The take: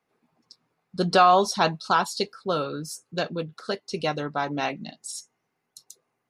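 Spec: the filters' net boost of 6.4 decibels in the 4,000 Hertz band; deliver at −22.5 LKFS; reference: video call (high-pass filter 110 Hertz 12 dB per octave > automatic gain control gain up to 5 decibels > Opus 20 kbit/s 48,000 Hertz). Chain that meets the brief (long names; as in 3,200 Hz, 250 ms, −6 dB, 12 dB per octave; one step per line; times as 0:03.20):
high-pass filter 110 Hz 12 dB per octave
parametric band 4,000 Hz +7.5 dB
automatic gain control gain up to 5 dB
level +2 dB
Opus 20 kbit/s 48,000 Hz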